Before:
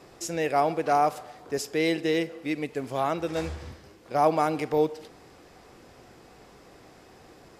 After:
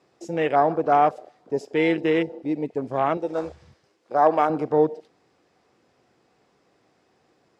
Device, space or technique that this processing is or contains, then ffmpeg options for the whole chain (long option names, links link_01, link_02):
over-cleaned archive recording: -filter_complex "[0:a]highpass=110,lowpass=7700,afwtdn=0.0224,asettb=1/sr,asplit=3[link_01][link_02][link_03];[link_01]atrim=end=3.174[link_04];[link_02]atrim=start=3.17:end=4.5,asetpts=PTS-STARTPTS,afade=type=in:duration=0.004:curve=qsin,afade=type=out:start_time=1.326:duration=0.004:curve=qsin,bass=frequency=250:gain=-11,treble=frequency=4000:gain=3[link_05];[link_03]atrim=start=4.496[link_06];[link_04][link_05]acrossfade=duration=0.004:curve1=hsin:curve2=qsin[link_07];[link_07][link_06]acrossfade=duration=0.004:curve1=qsin:curve2=hsin,volume=4.5dB"